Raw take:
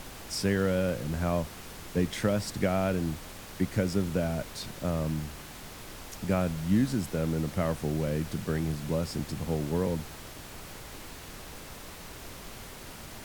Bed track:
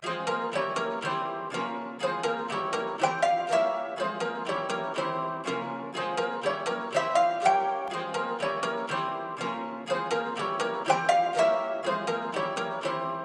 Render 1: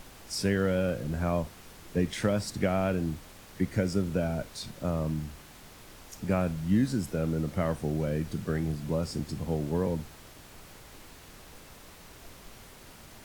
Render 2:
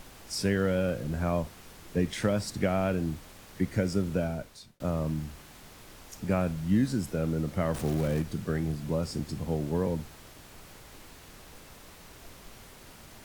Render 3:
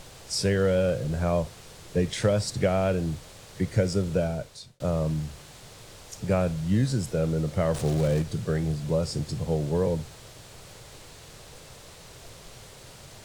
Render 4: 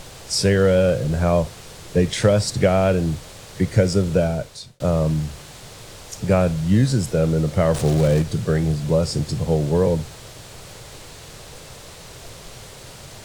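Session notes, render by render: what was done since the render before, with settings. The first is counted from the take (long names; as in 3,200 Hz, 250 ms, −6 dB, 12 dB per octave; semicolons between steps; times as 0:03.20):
noise reduction from a noise print 6 dB
0:04.19–0:04.80: fade out; 0:07.74–0:08.22: converter with a step at zero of −35 dBFS
graphic EQ with 10 bands 125 Hz +9 dB, 250 Hz −6 dB, 500 Hz +7 dB, 4,000 Hz +5 dB, 8,000 Hz +7 dB, 16,000 Hz −5 dB
level +7 dB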